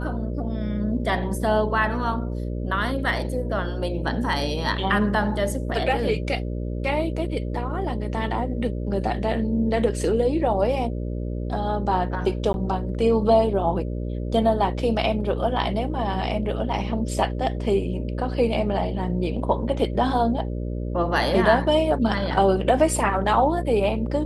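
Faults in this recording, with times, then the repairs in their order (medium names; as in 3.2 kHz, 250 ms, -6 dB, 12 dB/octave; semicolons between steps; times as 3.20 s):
buzz 60 Hz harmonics 10 -28 dBFS
12.53–12.54 s: dropout 11 ms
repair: de-hum 60 Hz, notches 10; interpolate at 12.53 s, 11 ms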